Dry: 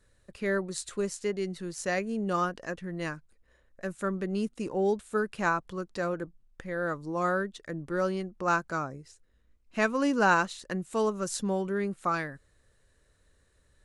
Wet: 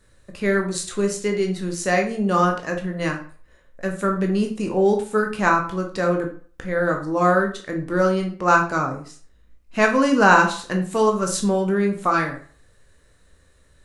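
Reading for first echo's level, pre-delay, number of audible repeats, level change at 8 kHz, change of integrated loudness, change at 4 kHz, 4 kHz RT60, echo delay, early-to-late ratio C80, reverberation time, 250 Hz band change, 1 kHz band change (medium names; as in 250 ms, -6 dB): no echo, 13 ms, no echo, +9.0 dB, +10.0 dB, +9.0 dB, 0.35 s, no echo, 13.5 dB, 0.45 s, +9.5 dB, +10.0 dB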